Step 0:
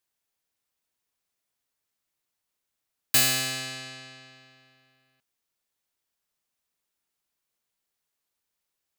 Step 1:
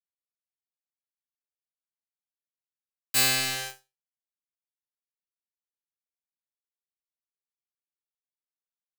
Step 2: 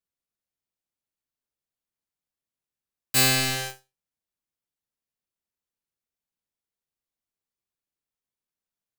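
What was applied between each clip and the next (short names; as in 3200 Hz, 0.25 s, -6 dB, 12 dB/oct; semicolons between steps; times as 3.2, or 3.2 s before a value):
bit-crush 5-bit; resonator bank C3 sus4, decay 0.25 s; gain +6.5 dB
low shelf 460 Hz +9 dB; gain +2 dB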